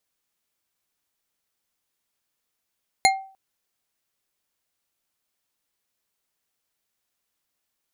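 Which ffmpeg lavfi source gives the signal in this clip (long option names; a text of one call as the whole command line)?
ffmpeg -f lavfi -i "aevalsrc='0.224*pow(10,-3*t/0.43)*sin(2*PI*772*t)+0.188*pow(10,-3*t/0.211)*sin(2*PI*2128.4*t)+0.158*pow(10,-3*t/0.132)*sin(2*PI*4171.9*t)+0.133*pow(10,-3*t/0.093)*sin(2*PI*6896.3*t)+0.112*pow(10,-3*t/0.07)*sin(2*PI*10298.5*t)':duration=0.3:sample_rate=44100" out.wav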